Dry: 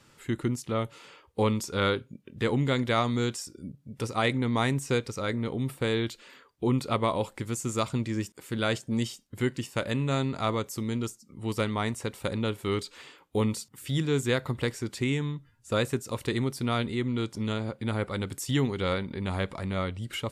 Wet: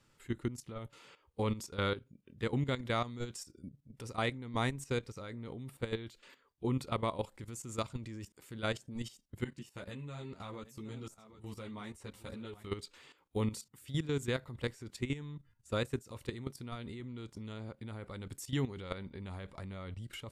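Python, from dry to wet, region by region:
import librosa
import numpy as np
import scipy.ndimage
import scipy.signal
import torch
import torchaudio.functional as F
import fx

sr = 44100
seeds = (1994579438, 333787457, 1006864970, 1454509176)

y = fx.chain(x, sr, fx.echo_single(ms=765, db=-16.5),
    fx.ensemble(), at=(9.44, 12.67))
y = fx.level_steps(y, sr, step_db=13)
y = fx.low_shelf(y, sr, hz=61.0, db=11.0)
y = y * librosa.db_to_amplitude(-6.0)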